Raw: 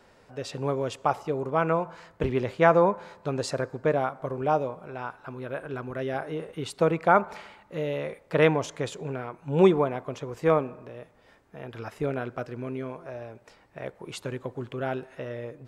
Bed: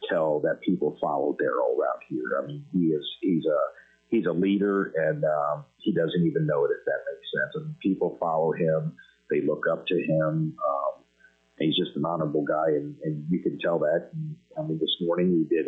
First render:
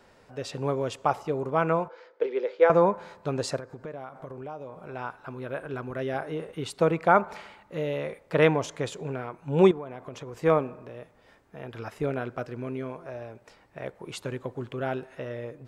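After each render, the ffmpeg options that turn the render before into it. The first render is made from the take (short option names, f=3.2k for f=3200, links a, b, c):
-filter_complex "[0:a]asettb=1/sr,asplit=3[a][b][c];[a]atrim=end=1.884[d];[b]atrim=start=1.88:end=2.7,asetpts=PTS-STARTPTS,afade=t=in:d=0.004:c=qsin,afade=t=out:st=0.816:d=0.004:c=qsin,highpass=f=400:w=0.5412,highpass=f=400:w=1.3066,equalizer=f=480:t=q:w=4:g=9,equalizer=f=700:t=q:w=4:g=-10,equalizer=f=1.1k:t=q:w=4:g=-9,equalizer=f=1.8k:t=q:w=4:g=-5,equalizer=f=2.8k:t=q:w=4:g=-8,equalizer=f=4.1k:t=q:w=4:g=-5,lowpass=f=4.6k:w=0.5412,lowpass=f=4.6k:w=1.3066[e];[c]atrim=start=2.696[f];[d][e]acrossfade=d=0.004:c1=hsin:c2=qsin[g];[g][f]acrossfade=d=0.004:c1=qsin:c2=hsin,asettb=1/sr,asplit=3[h][i][j];[h]atrim=end=3.564[k];[i]atrim=start=3.56:end=4.82,asetpts=PTS-STARTPTS,afade=t=in:d=0.004:c=qsin,afade=t=out:st=1.256:d=0.004:c=qsin,acompressor=threshold=-37dB:ratio=4:attack=3.2:release=140:knee=1:detection=peak[l];[j]atrim=start=4.816[m];[k][l]acrossfade=d=0.004:c1=hsin:c2=qsin[n];[n][m]acrossfade=d=0.004:c1=qsin:c2=hsin,asettb=1/sr,asplit=3[o][p][q];[o]atrim=end=9.714[r];[p]atrim=start=9.71:end=10.4,asetpts=PTS-STARTPTS,afade=t=in:d=0.004:c=qsin,afade=t=out:st=0.686:d=0.004:c=qsin,acompressor=threshold=-35dB:ratio=4:attack=3.2:release=140:knee=1:detection=peak[s];[q]atrim=start=10.396[t];[r][s]acrossfade=d=0.004:c1=hsin:c2=qsin[u];[u][t]acrossfade=d=0.004:c1=qsin:c2=hsin"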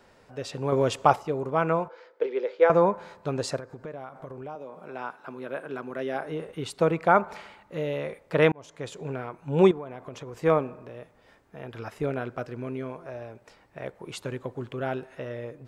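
-filter_complex "[0:a]asettb=1/sr,asplit=3[a][b][c];[a]atrim=end=0.724[d];[b]atrim=start=0.72:end=1.16,asetpts=PTS-STARTPTS,afade=t=in:d=0.004:c=qsin,afade=t=out:st=0.436:d=0.004:c=qsin,acontrast=53[e];[c]atrim=start=1.156[f];[d][e]acrossfade=d=0.004:c1=hsin:c2=qsin[g];[g][f]acrossfade=d=0.004:c1=qsin:c2=hsin,asettb=1/sr,asplit=3[h][i][j];[h]atrim=end=4.554[k];[i]atrim=start=4.55:end=6.25,asetpts=PTS-STARTPTS,afade=t=in:d=0.004:c=qsin,afade=t=out:st=1.696:d=0.004:c=qsin,highpass=f=170:w=0.5412,highpass=f=170:w=1.3066[l];[j]atrim=start=6.246[m];[k][l]acrossfade=d=0.004:c1=hsin:c2=qsin[n];[n][m]acrossfade=d=0.004:c1=qsin:c2=hsin,asplit=2[o][p];[o]atrim=end=8.52,asetpts=PTS-STARTPTS,afade=t=out:st=8.516:d=0.004:c=hsin[q];[p]atrim=start=8.52,asetpts=PTS-STARTPTS,afade=t=in:d=0.58[r];[q][r]concat=n=2:v=0:a=1"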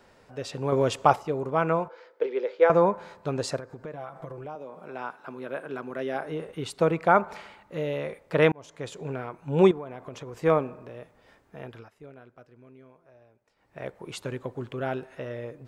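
-filter_complex "[0:a]asettb=1/sr,asplit=3[a][b][c];[a]atrim=end=3.924[d];[b]atrim=start=3.92:end=4.45,asetpts=PTS-STARTPTS,afade=t=in:d=0.004:c=qsin,afade=t=out:st=0.526:d=0.004:c=qsin,aecho=1:1:6:0.65,atrim=end_sample=23373[e];[c]atrim=start=4.446[f];[d][e]acrossfade=d=0.004:c1=hsin:c2=qsin[g];[g][f]acrossfade=d=0.004:c1=qsin:c2=hsin,asplit=3[h][i][j];[h]atrim=end=11.89,asetpts=PTS-STARTPTS,afade=t=out:st=11.63:d=0.26:silence=0.125893[k];[i]atrim=start=11.89:end=13.55,asetpts=PTS-STARTPTS,volume=-18dB[l];[j]atrim=start=13.55,asetpts=PTS-STARTPTS,afade=t=in:d=0.26:silence=0.125893[m];[k][l][m]concat=n=3:v=0:a=1"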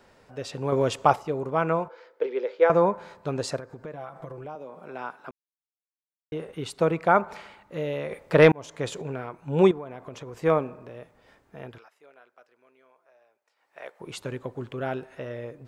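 -filter_complex "[0:a]asettb=1/sr,asplit=3[a][b][c];[a]atrim=end=8.114[d];[b]atrim=start=8.11:end=9.02,asetpts=PTS-STARTPTS,afade=t=in:d=0.004:c=qsin,afade=t=out:st=0.906:d=0.004:c=qsin,acontrast=50[e];[c]atrim=start=9.016[f];[d][e]acrossfade=d=0.004:c1=hsin:c2=qsin[g];[g][f]acrossfade=d=0.004:c1=qsin:c2=hsin,asettb=1/sr,asplit=3[h][i][j];[h]atrim=end=11.784[k];[i]atrim=start=11.78:end=14,asetpts=PTS-STARTPTS,afade=t=in:d=0.004:c=qsin,afade=t=out:st=2.216:d=0.004:c=qsin,highpass=670[l];[j]atrim=start=13.996[m];[k][l]acrossfade=d=0.004:c1=hsin:c2=qsin[n];[n][m]acrossfade=d=0.004:c1=qsin:c2=hsin,asplit=3[o][p][q];[o]atrim=end=5.31,asetpts=PTS-STARTPTS,afade=t=out:st=5.306:d=0.004:c=hsin[r];[p]atrim=start=5.31:end=6.32,asetpts=PTS-STARTPTS,volume=0[s];[q]atrim=start=6.32,asetpts=PTS-STARTPTS,afade=t=in:d=0.004:c=hsin[t];[r][s][t]concat=n=3:v=0:a=1"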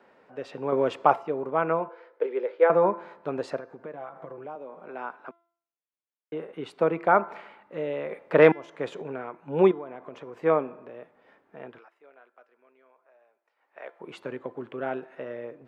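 -filter_complex "[0:a]acrossover=split=180 2900:gain=0.0631 1 0.126[a][b][c];[a][b][c]amix=inputs=3:normalize=0,bandreject=f=340.3:t=h:w=4,bandreject=f=680.6:t=h:w=4,bandreject=f=1.0209k:t=h:w=4,bandreject=f=1.3612k:t=h:w=4,bandreject=f=1.7015k:t=h:w=4,bandreject=f=2.0418k:t=h:w=4,bandreject=f=2.3821k:t=h:w=4,bandreject=f=2.7224k:t=h:w=4,bandreject=f=3.0627k:t=h:w=4,bandreject=f=3.403k:t=h:w=4,bandreject=f=3.7433k:t=h:w=4,bandreject=f=4.0836k:t=h:w=4,bandreject=f=4.4239k:t=h:w=4,bandreject=f=4.7642k:t=h:w=4,bandreject=f=5.1045k:t=h:w=4,bandreject=f=5.4448k:t=h:w=4,bandreject=f=5.7851k:t=h:w=4,bandreject=f=6.1254k:t=h:w=4"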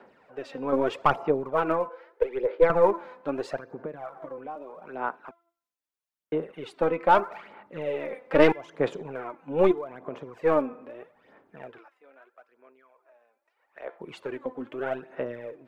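-af "aeval=exprs='(tanh(3.16*val(0)+0.35)-tanh(0.35))/3.16':c=same,aphaser=in_gain=1:out_gain=1:delay=4:decay=0.59:speed=0.79:type=sinusoidal"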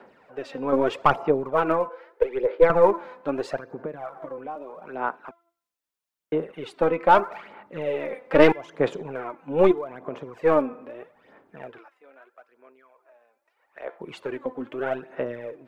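-af "volume=3dB"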